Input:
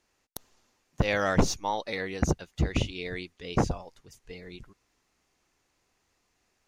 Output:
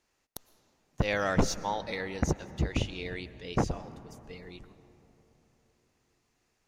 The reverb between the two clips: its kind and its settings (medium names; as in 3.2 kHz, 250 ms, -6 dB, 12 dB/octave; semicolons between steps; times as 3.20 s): algorithmic reverb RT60 3.8 s, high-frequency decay 0.35×, pre-delay 80 ms, DRR 15.5 dB; trim -2.5 dB